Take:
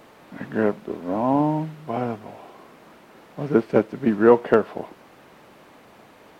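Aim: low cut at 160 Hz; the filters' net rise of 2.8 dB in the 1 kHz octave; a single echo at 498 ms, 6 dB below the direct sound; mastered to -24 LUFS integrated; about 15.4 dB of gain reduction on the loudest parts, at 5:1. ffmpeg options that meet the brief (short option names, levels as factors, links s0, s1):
-af "highpass=160,equalizer=f=1000:t=o:g=3.5,acompressor=threshold=0.0501:ratio=5,aecho=1:1:498:0.501,volume=2.37"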